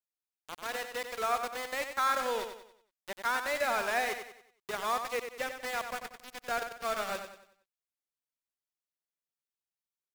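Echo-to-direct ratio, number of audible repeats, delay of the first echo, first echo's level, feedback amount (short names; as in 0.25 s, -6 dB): -7.0 dB, 4, 93 ms, -8.0 dB, 40%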